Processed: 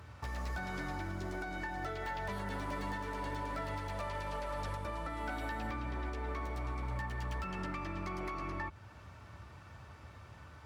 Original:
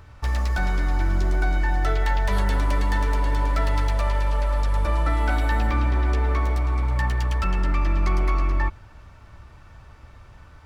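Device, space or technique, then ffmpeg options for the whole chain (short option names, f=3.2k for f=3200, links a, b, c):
podcast mastering chain: -af "highpass=f=75:w=0.5412,highpass=f=75:w=1.3066,deesser=0.95,acompressor=threshold=-31dB:ratio=4,alimiter=level_in=2.5dB:limit=-24dB:level=0:latency=1:release=377,volume=-2.5dB,volume=-2.5dB" -ar 48000 -c:a libmp3lame -b:a 112k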